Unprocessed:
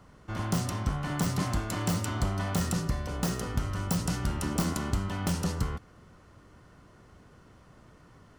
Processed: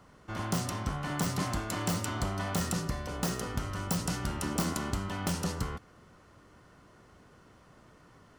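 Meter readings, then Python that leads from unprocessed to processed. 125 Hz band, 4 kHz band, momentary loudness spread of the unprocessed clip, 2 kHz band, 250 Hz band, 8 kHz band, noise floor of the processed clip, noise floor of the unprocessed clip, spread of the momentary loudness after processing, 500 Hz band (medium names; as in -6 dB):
-4.0 dB, 0.0 dB, 3 LU, 0.0 dB, -2.5 dB, 0.0 dB, -59 dBFS, -56 dBFS, 5 LU, -1.0 dB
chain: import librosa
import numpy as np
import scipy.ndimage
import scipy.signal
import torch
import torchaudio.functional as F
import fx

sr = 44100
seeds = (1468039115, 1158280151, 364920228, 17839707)

y = fx.low_shelf(x, sr, hz=170.0, db=-6.5)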